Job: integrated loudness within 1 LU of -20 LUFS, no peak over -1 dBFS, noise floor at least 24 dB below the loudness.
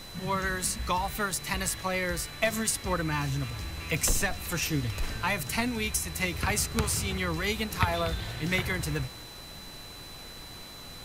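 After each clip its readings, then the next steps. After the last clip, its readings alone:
steady tone 4 kHz; tone level -46 dBFS; noise floor -45 dBFS; noise floor target -54 dBFS; loudness -29.5 LUFS; peak level -7.5 dBFS; loudness target -20.0 LUFS
-> band-stop 4 kHz, Q 30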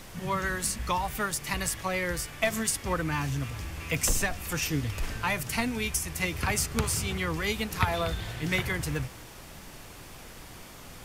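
steady tone not found; noise floor -47 dBFS; noise floor target -54 dBFS
-> noise print and reduce 7 dB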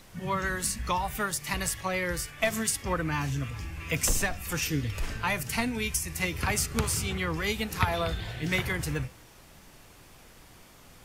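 noise floor -53 dBFS; noise floor target -54 dBFS
-> noise print and reduce 6 dB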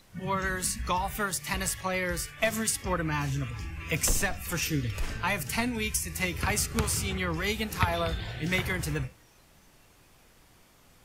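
noise floor -59 dBFS; loudness -29.5 LUFS; peak level -7.5 dBFS; loudness target -20.0 LUFS
-> trim +9.5 dB; peak limiter -1 dBFS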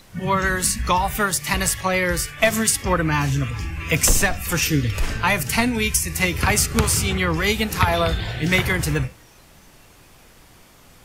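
loudness -20.0 LUFS; peak level -1.0 dBFS; noise floor -50 dBFS

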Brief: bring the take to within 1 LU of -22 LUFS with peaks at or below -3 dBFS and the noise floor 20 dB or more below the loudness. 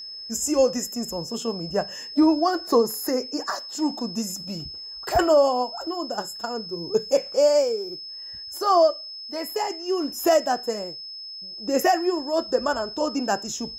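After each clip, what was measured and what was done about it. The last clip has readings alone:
steady tone 5.2 kHz; tone level -35 dBFS; loudness -24.0 LUFS; peak level -9.0 dBFS; loudness target -22.0 LUFS
-> band-stop 5.2 kHz, Q 30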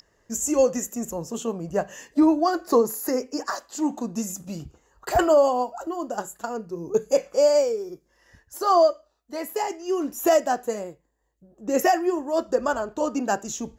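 steady tone not found; loudness -24.0 LUFS; peak level -9.0 dBFS; loudness target -22.0 LUFS
-> trim +2 dB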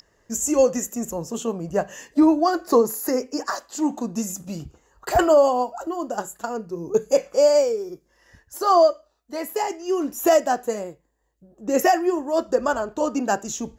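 loudness -22.0 LUFS; peak level -7.0 dBFS; noise floor -66 dBFS

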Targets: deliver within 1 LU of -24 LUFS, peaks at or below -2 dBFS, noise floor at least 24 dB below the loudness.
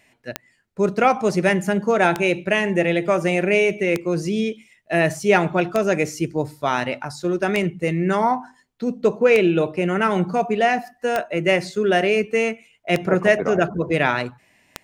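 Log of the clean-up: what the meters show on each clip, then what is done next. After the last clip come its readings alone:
clicks found 9; loudness -20.5 LUFS; peak level -2.0 dBFS; loudness target -24.0 LUFS
-> de-click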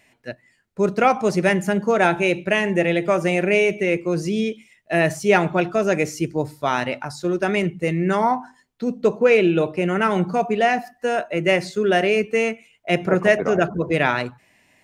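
clicks found 0; loudness -20.5 LUFS; peak level -2.0 dBFS; loudness target -24.0 LUFS
-> trim -3.5 dB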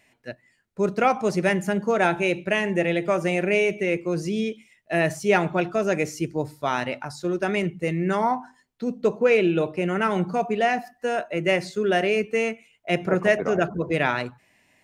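loudness -24.0 LUFS; peak level -5.5 dBFS; noise floor -64 dBFS

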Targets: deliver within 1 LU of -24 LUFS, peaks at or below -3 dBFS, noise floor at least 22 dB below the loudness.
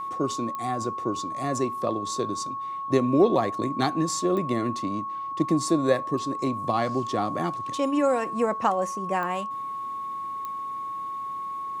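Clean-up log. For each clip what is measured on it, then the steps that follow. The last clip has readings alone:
clicks found 4; steady tone 1.1 kHz; tone level -30 dBFS; loudness -27.0 LUFS; peak level -7.5 dBFS; loudness target -24.0 LUFS
-> de-click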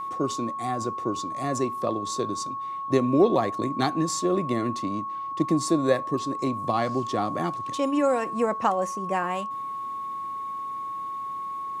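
clicks found 0; steady tone 1.1 kHz; tone level -30 dBFS
-> band-stop 1.1 kHz, Q 30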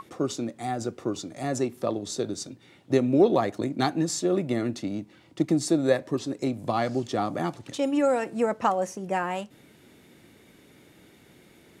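steady tone not found; loudness -27.0 LUFS; peak level -8.0 dBFS; loudness target -24.0 LUFS
-> trim +3 dB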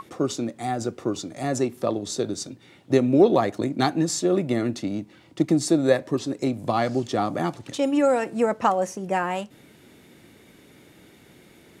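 loudness -24.0 LUFS; peak level -5.0 dBFS; noise floor -53 dBFS

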